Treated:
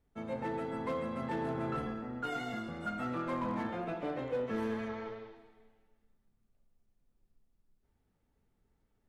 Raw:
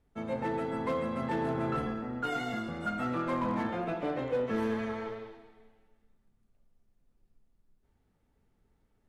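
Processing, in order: 4.88–5.36 LPF 6600 Hz 24 dB/oct; gain -4 dB

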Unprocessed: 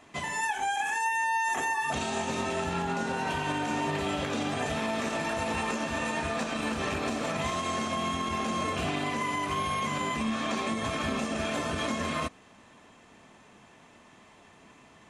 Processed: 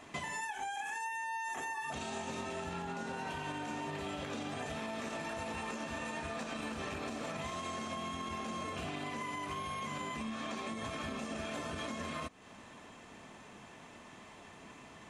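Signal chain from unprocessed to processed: compressor, threshold -40 dBFS, peak gain reduction 13.5 dB; gain +2 dB

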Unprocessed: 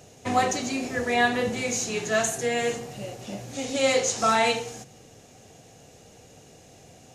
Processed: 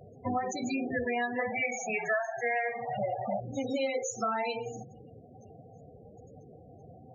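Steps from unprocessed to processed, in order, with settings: 1.39–3.4 band shelf 1200 Hz +14 dB 2.3 oct; compressor 12:1, threshold -29 dBFS, peak gain reduction 22.5 dB; loudest bins only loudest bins 16; gain +2 dB

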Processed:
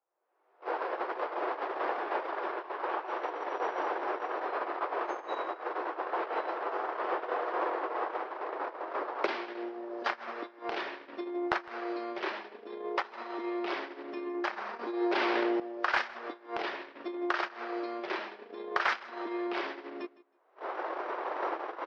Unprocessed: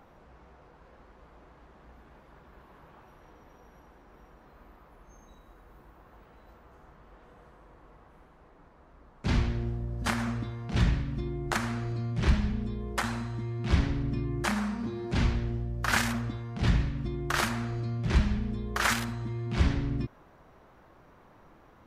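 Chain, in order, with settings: recorder AGC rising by 43 dB/s; 12.94–13.71 notch 1600 Hz, Q 11; gate -25 dBFS, range -34 dB; Chebyshev band-pass 350–5300 Hz, order 4; overdrive pedal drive 10 dB, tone 1100 Hz, clips at -9 dBFS; feedback echo 0.159 s, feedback 17%, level -20.5 dB; 15.06–15.6 fast leveller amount 100%

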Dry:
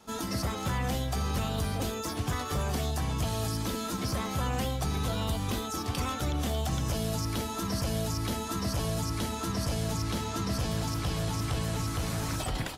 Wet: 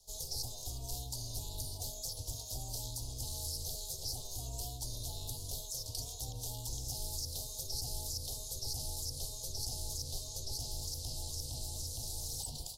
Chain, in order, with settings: elliptic band-stop 580–4400 Hz, stop band 60 dB; ring modulator 190 Hz; passive tone stack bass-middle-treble 10-0-10; gain +4 dB

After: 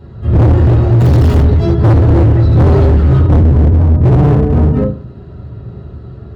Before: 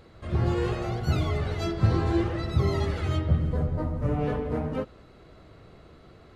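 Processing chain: 1–1.4 infinite clipping; low shelf 220 Hz +12 dB; notch 2200 Hz, Q 5.2; reverb RT60 0.45 s, pre-delay 3 ms, DRR -6 dB; hard clip -1 dBFS, distortion -4 dB; gain -4.5 dB

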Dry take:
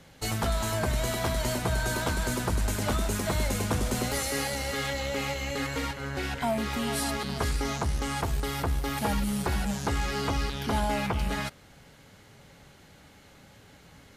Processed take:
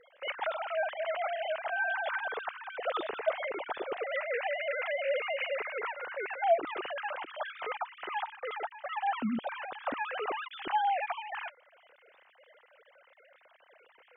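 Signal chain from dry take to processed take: sine-wave speech; gain -5.5 dB

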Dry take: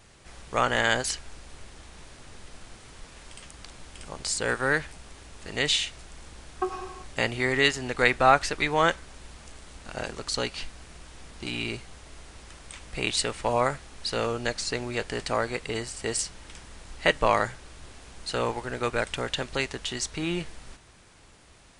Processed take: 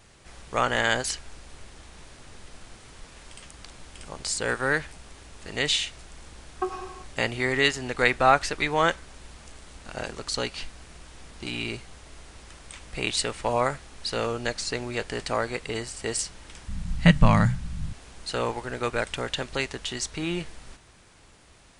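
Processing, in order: 16.68–17.93 resonant low shelf 260 Hz +14 dB, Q 3

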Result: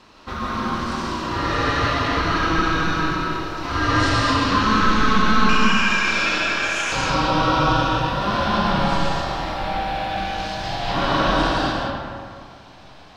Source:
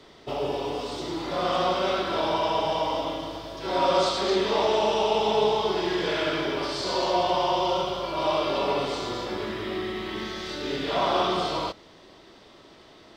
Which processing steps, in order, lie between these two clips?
ring modulator 650 Hz, from 5.49 s 2000 Hz, from 6.92 s 410 Hz; reverb RT60 2.1 s, pre-delay 95 ms, DRR -3 dB; gain +4 dB

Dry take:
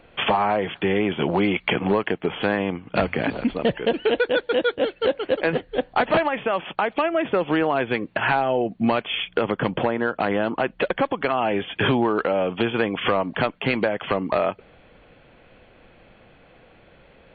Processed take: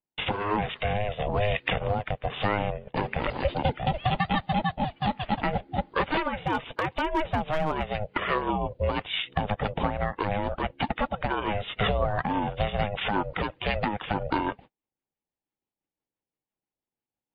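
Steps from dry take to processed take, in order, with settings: bin magnitudes rounded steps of 15 dB; gate -40 dBFS, range -43 dB; rotary speaker horn 1.1 Hz, later 6 Hz, at 6.1; in parallel at +1.5 dB: compressor 12:1, threshold -30 dBFS, peak gain reduction 13.5 dB; 6.44–7.83 on the sum: hard clip -14 dBFS, distortion -29 dB; ring modulator 310 Hz; 3.4–4.42 three-band squash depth 70%; gain -2.5 dB

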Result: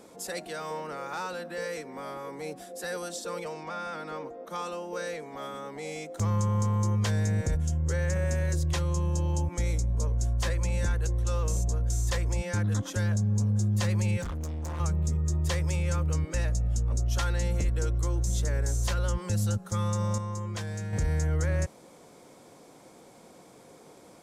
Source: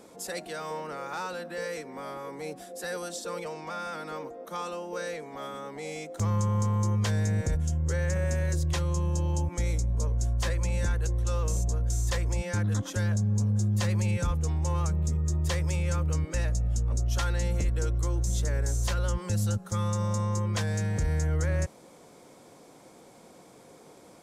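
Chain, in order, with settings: 3.63–4.5 high shelf 8000 Hz -11 dB; 14.21–14.8 hard clip -32 dBFS, distortion -19 dB; 20.18–20.93 resonator 350 Hz, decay 0.68 s, mix 50%

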